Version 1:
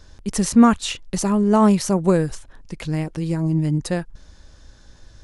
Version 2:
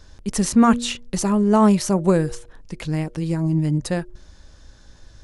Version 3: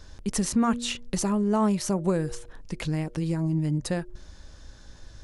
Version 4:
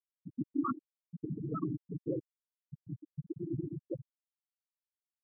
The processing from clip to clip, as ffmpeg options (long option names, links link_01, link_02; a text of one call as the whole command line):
ffmpeg -i in.wav -af "bandreject=frequency=119.4:width_type=h:width=4,bandreject=frequency=238.8:width_type=h:width=4,bandreject=frequency=358.2:width_type=h:width=4,bandreject=frequency=477.6:width_type=h:width=4,bandreject=frequency=597:width_type=h:width=4" out.wav
ffmpeg -i in.wav -af "acompressor=threshold=-27dB:ratio=2" out.wav
ffmpeg -i in.wav -af "afftfilt=real='hypot(re,im)*cos(2*PI*random(0))':imag='hypot(re,im)*sin(2*PI*random(1))':win_size=512:overlap=0.75,highpass=130,equalizer=frequency=140:width_type=q:width=4:gain=6,equalizer=frequency=210:width_type=q:width=4:gain=-8,equalizer=frequency=320:width_type=q:width=4:gain=7,equalizer=frequency=810:width_type=q:width=4:gain=-3,equalizer=frequency=1300:width_type=q:width=4:gain=9,equalizer=frequency=2100:width_type=q:width=4:gain=-6,lowpass=frequency=3300:width=0.5412,lowpass=frequency=3300:width=1.3066,afftfilt=real='re*gte(hypot(re,im),0.2)':imag='im*gte(hypot(re,im),0.2)':win_size=1024:overlap=0.75,volume=-3.5dB" out.wav